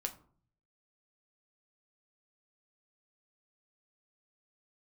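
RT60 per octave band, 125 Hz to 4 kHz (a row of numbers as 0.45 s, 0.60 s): 0.90 s, 0.65 s, 0.55 s, 0.45 s, 0.35 s, 0.25 s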